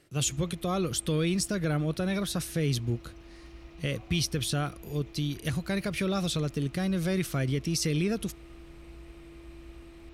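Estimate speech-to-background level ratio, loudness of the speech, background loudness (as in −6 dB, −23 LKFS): 20.0 dB, −30.0 LKFS, −50.0 LKFS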